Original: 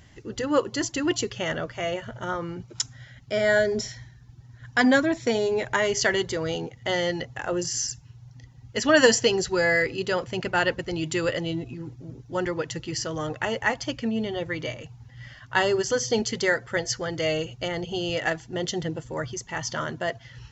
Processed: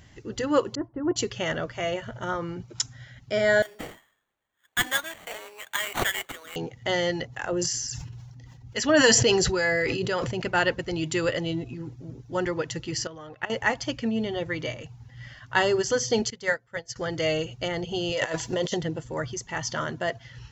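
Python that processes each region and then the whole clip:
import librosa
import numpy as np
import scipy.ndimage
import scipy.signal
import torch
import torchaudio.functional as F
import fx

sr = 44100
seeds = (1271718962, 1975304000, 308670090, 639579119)

y = fx.chain(x, sr, fx.lowpass(hz=1200.0, slope=24),
    fx.upward_expand(threshold_db=-39.0, expansion=1.5), at=(0.75, 1.16))
y = fx.chain(y, sr, fx.bessel_highpass(hz=1800.0, order=2),
    fx.sample_hold(seeds[0], rate_hz=5100.0, jitter_pct=0),
    fx.band_widen(depth_pct=40), at=(3.62, 6.56))
y = fx.chain(y, sr, fx.harmonic_tremolo(hz=3.6, depth_pct=50, crossover_hz=800.0),
    fx.sustainer(db_per_s=28.0), at=(7.27, 10.42))
y = fx.chain(y, sr, fx.lowpass(hz=4000.0, slope=12),
    fx.level_steps(step_db=13),
    fx.low_shelf(hz=390.0, db=-6.0), at=(13.07, 13.5))
y = fx.chain(y, sr, fx.notch(hz=360.0, q=6.9),
    fx.upward_expand(threshold_db=-34.0, expansion=2.5), at=(16.3, 16.96))
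y = fx.chain(y, sr, fx.high_shelf(hz=2300.0, db=11.5),
    fx.over_compress(threshold_db=-31.0, ratio=-1.0),
    fx.small_body(hz=(550.0, 990.0), ring_ms=25, db=11), at=(18.12, 18.77))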